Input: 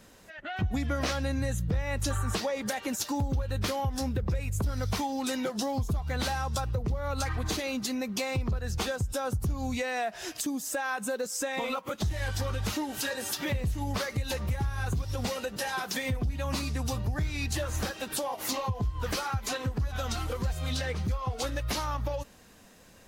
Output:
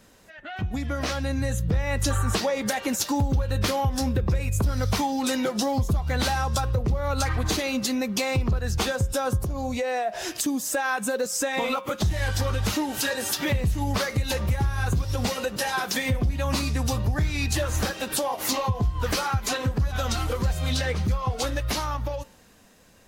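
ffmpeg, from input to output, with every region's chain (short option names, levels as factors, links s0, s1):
-filter_complex "[0:a]asettb=1/sr,asplit=3[s0][s1][s2];[s0]atrim=end=9.404[s3];[s1]atrim=start=9.4:end=10.23,asetpts=PTS-STARTPTS,afade=t=in:d=0.004:c=qsin,afade=t=out:st=0.826:d=0.004:c=qsin,equalizer=f=580:w=1.5:g=10,acompressor=threshold=0.0251:ratio=3:attack=3.2:release=140:knee=1:detection=peak[s4];[s2]atrim=start=10.226[s5];[s3][s4]acrossfade=d=0.004:c1=hsin:c2=qsin[s6];[s6][s5]acrossfade=d=0.004:c1=qsin:c2=hsin,bandreject=f=178.6:t=h:w=4,bandreject=f=357.2:t=h:w=4,bandreject=f=535.8:t=h:w=4,bandreject=f=714.4:t=h:w=4,bandreject=f=893:t=h:w=4,bandreject=f=1071.6:t=h:w=4,bandreject=f=1250.2:t=h:w=4,bandreject=f=1428.8:t=h:w=4,bandreject=f=1607.4:t=h:w=4,bandreject=f=1786:t=h:w=4,bandreject=f=1964.6:t=h:w=4,bandreject=f=2143.2:t=h:w=4,bandreject=f=2321.8:t=h:w=4,bandreject=f=2500.4:t=h:w=4,bandreject=f=2679:t=h:w=4,bandreject=f=2857.6:t=h:w=4,bandreject=f=3036.2:t=h:w=4,bandreject=f=3214.8:t=h:w=4,bandreject=f=3393.4:t=h:w=4,bandreject=f=3572:t=h:w=4,bandreject=f=3750.6:t=h:w=4,dynaudnorm=f=130:g=21:m=2"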